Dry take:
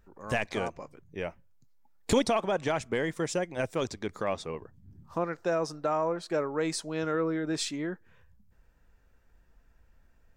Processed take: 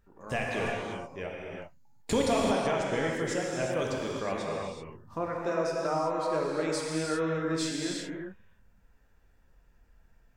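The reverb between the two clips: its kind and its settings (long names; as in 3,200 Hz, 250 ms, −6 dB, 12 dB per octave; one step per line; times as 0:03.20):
reverb whose tail is shaped and stops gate 410 ms flat, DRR −3 dB
level −4 dB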